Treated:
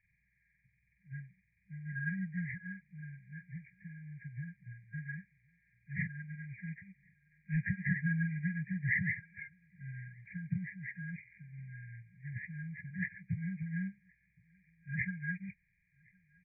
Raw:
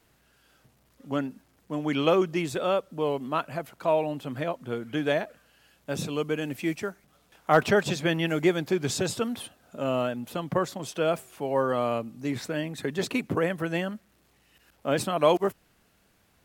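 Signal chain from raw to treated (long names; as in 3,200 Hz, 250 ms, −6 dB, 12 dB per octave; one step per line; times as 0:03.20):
hearing-aid frequency compression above 1,300 Hz 4 to 1
brick-wall band-stop 200–1,600 Hz
0:09.92–0:10.35: surface crackle 16 per second → 42 per second −55 dBFS
high-frequency loss of the air 420 metres
on a send: single-tap delay 1,066 ms −23.5 dB
on the sum: expander for the loud parts 1.5 to 1, over −47 dBFS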